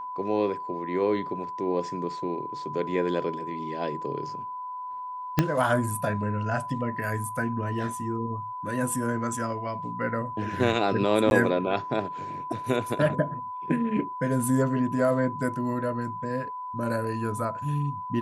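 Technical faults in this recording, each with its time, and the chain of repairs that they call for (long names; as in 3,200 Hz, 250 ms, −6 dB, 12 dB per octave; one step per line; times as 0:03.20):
whistle 1,000 Hz −33 dBFS
0:05.39: click −7 dBFS
0:11.30–0:11.31: drop-out 11 ms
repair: click removal
notch filter 1,000 Hz, Q 30
repair the gap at 0:11.30, 11 ms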